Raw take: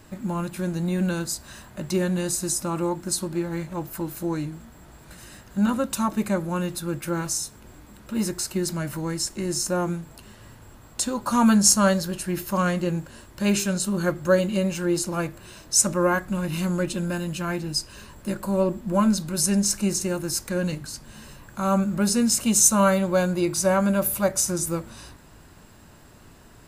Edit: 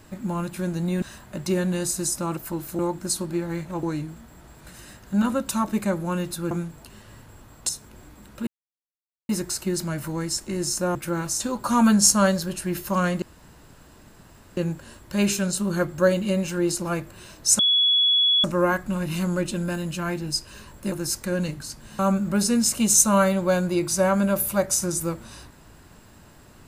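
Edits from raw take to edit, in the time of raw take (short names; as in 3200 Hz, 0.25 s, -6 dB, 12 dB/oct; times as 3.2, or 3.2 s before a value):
1.02–1.46 cut
3.85–4.27 move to 2.81
6.95–7.4 swap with 9.84–11.02
8.18 insert silence 0.82 s
12.84 insert room tone 1.35 s
15.86 add tone 3380 Hz -16 dBFS 0.85 s
18.34–20.16 cut
21.23–21.65 cut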